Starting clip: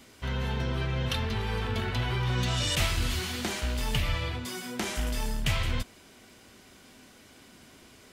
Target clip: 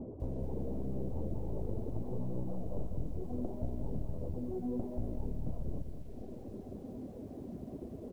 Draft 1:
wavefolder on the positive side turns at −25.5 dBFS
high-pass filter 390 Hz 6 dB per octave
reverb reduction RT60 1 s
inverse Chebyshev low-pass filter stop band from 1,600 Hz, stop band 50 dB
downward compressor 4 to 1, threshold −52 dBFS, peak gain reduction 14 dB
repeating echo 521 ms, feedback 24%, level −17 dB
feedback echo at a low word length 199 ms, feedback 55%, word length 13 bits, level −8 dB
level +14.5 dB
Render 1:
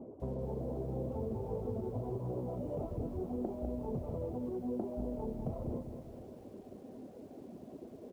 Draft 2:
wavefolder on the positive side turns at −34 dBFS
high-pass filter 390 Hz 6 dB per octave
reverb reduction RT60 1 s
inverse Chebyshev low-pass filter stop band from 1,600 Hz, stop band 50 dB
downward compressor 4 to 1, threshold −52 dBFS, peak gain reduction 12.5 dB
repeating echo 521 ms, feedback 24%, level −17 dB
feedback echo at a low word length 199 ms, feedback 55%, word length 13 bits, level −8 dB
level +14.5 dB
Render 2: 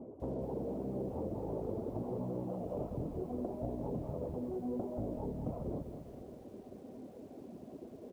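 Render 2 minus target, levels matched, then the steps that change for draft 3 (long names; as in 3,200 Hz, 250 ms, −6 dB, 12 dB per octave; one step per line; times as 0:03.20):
500 Hz band +3.5 dB
remove: high-pass filter 390 Hz 6 dB per octave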